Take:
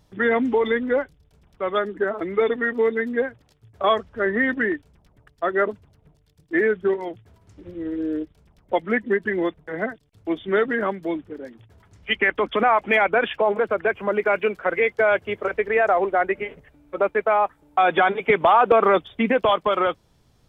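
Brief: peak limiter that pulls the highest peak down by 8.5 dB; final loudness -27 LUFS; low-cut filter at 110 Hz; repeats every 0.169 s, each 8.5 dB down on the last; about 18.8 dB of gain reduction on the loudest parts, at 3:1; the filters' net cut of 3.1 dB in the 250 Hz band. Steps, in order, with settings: HPF 110 Hz; bell 250 Hz -4 dB; compressor 3:1, threshold -39 dBFS; limiter -30 dBFS; feedback echo 0.169 s, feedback 38%, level -8.5 dB; gain +13 dB

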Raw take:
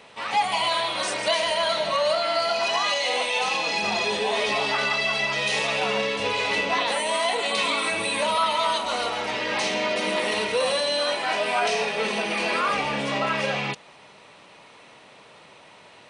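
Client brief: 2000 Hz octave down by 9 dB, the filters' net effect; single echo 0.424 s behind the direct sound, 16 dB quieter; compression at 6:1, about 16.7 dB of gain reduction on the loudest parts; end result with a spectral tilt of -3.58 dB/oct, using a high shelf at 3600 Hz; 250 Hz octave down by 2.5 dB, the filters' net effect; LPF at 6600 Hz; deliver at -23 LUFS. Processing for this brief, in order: LPF 6600 Hz; bell 250 Hz -3 dB; bell 2000 Hz -9 dB; high shelf 3600 Hz -7.5 dB; compressor 6:1, threshold -40 dBFS; echo 0.424 s -16 dB; gain +18.5 dB

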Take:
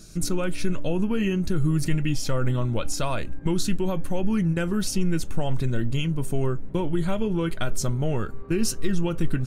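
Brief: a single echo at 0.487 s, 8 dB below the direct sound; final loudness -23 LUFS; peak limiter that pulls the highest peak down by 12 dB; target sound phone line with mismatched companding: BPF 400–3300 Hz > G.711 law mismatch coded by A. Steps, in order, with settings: limiter -21.5 dBFS; BPF 400–3300 Hz; echo 0.487 s -8 dB; G.711 law mismatch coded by A; gain +18 dB

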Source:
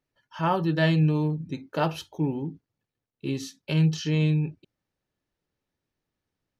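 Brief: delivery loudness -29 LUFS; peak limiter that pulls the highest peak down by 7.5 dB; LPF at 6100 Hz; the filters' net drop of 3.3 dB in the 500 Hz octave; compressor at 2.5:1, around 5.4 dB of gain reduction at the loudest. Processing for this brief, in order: LPF 6100 Hz; bell 500 Hz -4.5 dB; compressor 2.5:1, threshold -26 dBFS; gain +4 dB; limiter -19 dBFS

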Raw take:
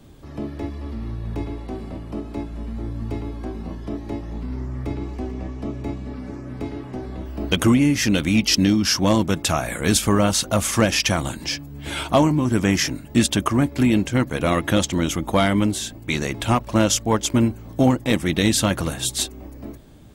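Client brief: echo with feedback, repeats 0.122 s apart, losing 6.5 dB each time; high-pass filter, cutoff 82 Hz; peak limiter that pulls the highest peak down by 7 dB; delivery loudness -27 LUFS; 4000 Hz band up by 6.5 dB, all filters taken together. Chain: HPF 82 Hz; bell 4000 Hz +8.5 dB; limiter -7 dBFS; feedback echo 0.122 s, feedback 47%, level -6.5 dB; gain -7.5 dB

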